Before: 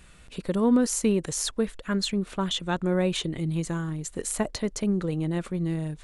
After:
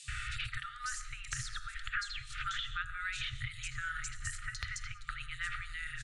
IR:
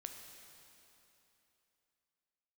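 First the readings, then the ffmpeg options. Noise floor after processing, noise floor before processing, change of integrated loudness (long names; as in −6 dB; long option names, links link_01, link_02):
−49 dBFS, −51 dBFS, −12.0 dB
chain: -filter_complex "[0:a]equalizer=frequency=1900:width_type=o:width=0.2:gain=3.5,bandreject=frequency=86.05:width_type=h:width=4,bandreject=frequency=172.1:width_type=h:width=4,bandreject=frequency=258.15:width_type=h:width=4,bandreject=frequency=344.2:width_type=h:width=4,bandreject=frequency=430.25:width_type=h:width=4,bandreject=frequency=516.3:width_type=h:width=4,bandreject=frequency=602.35:width_type=h:width=4,bandreject=frequency=688.4:width_type=h:width=4,bandreject=frequency=774.45:width_type=h:width=4,bandreject=frequency=860.5:width_type=h:width=4,bandreject=frequency=946.55:width_type=h:width=4,bandreject=frequency=1032.6:width_type=h:width=4,bandreject=frequency=1118.65:width_type=h:width=4,bandreject=frequency=1204.7:width_type=h:width=4,bandreject=frequency=1290.75:width_type=h:width=4,bandreject=frequency=1376.8:width_type=h:width=4,bandreject=frequency=1462.85:width_type=h:width=4,bandreject=frequency=1548.9:width_type=h:width=4,bandreject=frequency=1634.95:width_type=h:width=4,bandreject=frequency=1721:width_type=h:width=4,bandreject=frequency=1807.05:width_type=h:width=4,bandreject=frequency=1893.1:width_type=h:width=4,asplit=2[link_01][link_02];[1:a]atrim=start_sample=2205,afade=type=out:start_time=0.25:duration=0.01,atrim=end_sample=11466[link_03];[link_02][link_03]afir=irnorm=-1:irlink=0,volume=0dB[link_04];[link_01][link_04]amix=inputs=2:normalize=0,acompressor=threshold=-34dB:ratio=4,afftfilt=real='re*(1-between(b*sr/4096,130,1200))':imag='im*(1-between(b*sr/4096,130,1200))':win_size=4096:overlap=0.75,acrossover=split=130|1400[link_05][link_06][link_07];[link_05]acompressor=threshold=-58dB:ratio=4[link_08];[link_06]acompressor=threshold=-59dB:ratio=4[link_09];[link_07]acompressor=threshold=-52dB:ratio=4[link_10];[link_08][link_09][link_10]amix=inputs=3:normalize=0,lowpass=frequency=9300:width=0.5412,lowpass=frequency=9300:width=1.3066,acrossover=split=4100[link_11][link_12];[link_11]adelay=80[link_13];[link_13][link_12]amix=inputs=2:normalize=0,asplit=2[link_14][link_15];[link_15]acrusher=bits=5:mix=0:aa=0.000001,volume=-10dB[link_16];[link_14][link_16]amix=inputs=2:normalize=0,highshelf=frequency=6100:gain=-12,volume=16dB"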